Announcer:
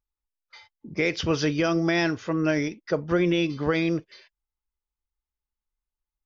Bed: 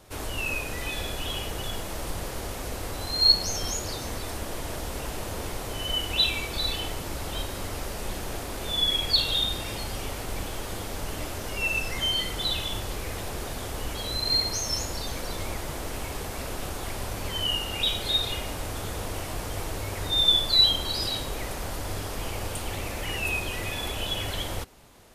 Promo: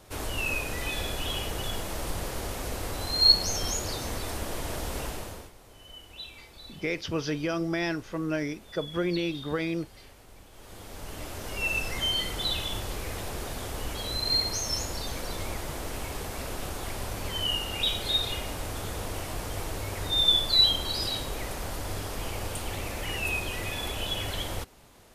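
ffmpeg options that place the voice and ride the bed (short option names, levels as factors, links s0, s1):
-filter_complex "[0:a]adelay=5850,volume=0.501[s0];[1:a]volume=7.5,afade=t=out:st=5.01:d=0.5:silence=0.112202,afade=t=in:st=10.51:d=1.2:silence=0.133352[s1];[s0][s1]amix=inputs=2:normalize=0"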